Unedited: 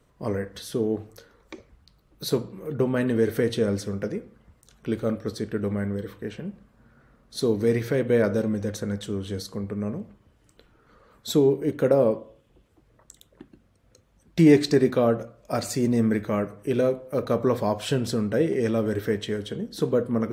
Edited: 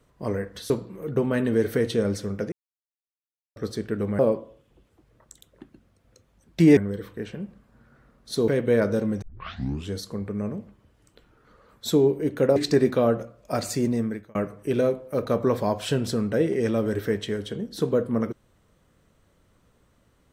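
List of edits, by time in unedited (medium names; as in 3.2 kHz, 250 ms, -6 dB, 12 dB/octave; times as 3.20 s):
0.70–2.33 s: delete
4.15–5.19 s: mute
7.53–7.90 s: delete
8.64 s: tape start 0.69 s
11.98–14.56 s: move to 5.82 s
15.80–16.35 s: fade out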